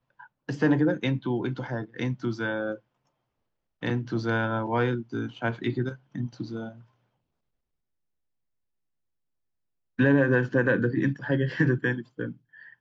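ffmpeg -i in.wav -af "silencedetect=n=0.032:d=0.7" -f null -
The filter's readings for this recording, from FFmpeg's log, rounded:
silence_start: 2.75
silence_end: 3.83 | silence_duration: 1.08
silence_start: 6.68
silence_end: 9.99 | silence_duration: 3.30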